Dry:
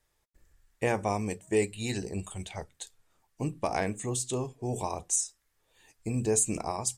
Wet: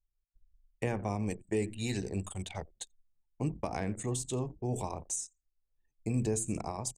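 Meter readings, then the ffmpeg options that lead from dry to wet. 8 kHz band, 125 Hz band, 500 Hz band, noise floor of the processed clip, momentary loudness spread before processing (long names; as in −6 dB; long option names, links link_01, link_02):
−7.5 dB, 0.0 dB, −5.5 dB, −82 dBFS, 14 LU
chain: -filter_complex "[0:a]asplit=4[link_01][link_02][link_03][link_04];[link_02]adelay=86,afreqshift=-100,volume=-17.5dB[link_05];[link_03]adelay=172,afreqshift=-200,volume=-27.7dB[link_06];[link_04]adelay=258,afreqshift=-300,volume=-37.8dB[link_07];[link_01][link_05][link_06][link_07]amix=inputs=4:normalize=0,acrossover=split=280[link_08][link_09];[link_09]acompressor=threshold=-37dB:ratio=2.5[link_10];[link_08][link_10]amix=inputs=2:normalize=0,anlmdn=0.0398"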